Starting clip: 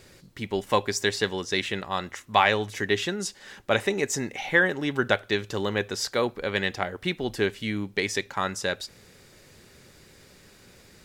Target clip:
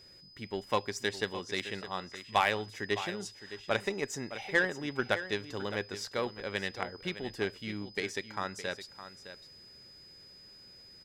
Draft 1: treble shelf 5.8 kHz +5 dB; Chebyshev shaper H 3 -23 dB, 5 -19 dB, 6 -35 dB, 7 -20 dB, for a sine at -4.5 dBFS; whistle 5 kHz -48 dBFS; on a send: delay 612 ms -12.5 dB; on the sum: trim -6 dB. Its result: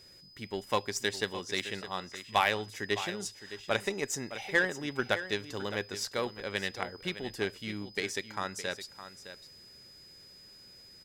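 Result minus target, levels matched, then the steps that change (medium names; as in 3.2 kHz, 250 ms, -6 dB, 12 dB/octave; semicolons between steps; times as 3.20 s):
8 kHz band +4.5 dB
change: treble shelf 5.8 kHz -4 dB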